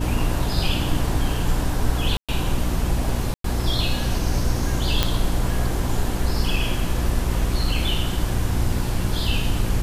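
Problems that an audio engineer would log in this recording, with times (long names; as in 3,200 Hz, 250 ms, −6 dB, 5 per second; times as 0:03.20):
mains hum 60 Hz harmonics 6 −26 dBFS
0:02.17–0:02.29: drop-out 116 ms
0:03.34–0:03.44: drop-out 103 ms
0:05.03: click −3 dBFS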